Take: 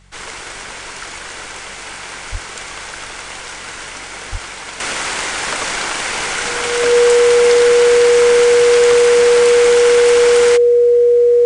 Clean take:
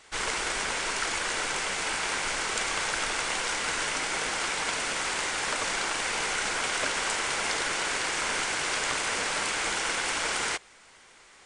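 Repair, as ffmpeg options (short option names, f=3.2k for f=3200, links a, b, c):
-filter_complex "[0:a]bandreject=f=46.6:t=h:w=4,bandreject=f=93.2:t=h:w=4,bandreject=f=139.8:t=h:w=4,bandreject=f=186.4:t=h:w=4,bandreject=f=480:w=30,asplit=3[a][b][c];[a]afade=t=out:st=2.31:d=0.02[d];[b]highpass=f=140:w=0.5412,highpass=f=140:w=1.3066,afade=t=in:st=2.31:d=0.02,afade=t=out:st=2.43:d=0.02[e];[c]afade=t=in:st=2.43:d=0.02[f];[d][e][f]amix=inputs=3:normalize=0,asplit=3[g][h][i];[g]afade=t=out:st=4.31:d=0.02[j];[h]highpass=f=140:w=0.5412,highpass=f=140:w=1.3066,afade=t=in:st=4.31:d=0.02,afade=t=out:st=4.43:d=0.02[k];[i]afade=t=in:st=4.43:d=0.02[l];[j][k][l]amix=inputs=3:normalize=0,asetnsamples=n=441:p=0,asendcmd='4.8 volume volume -9dB',volume=0dB"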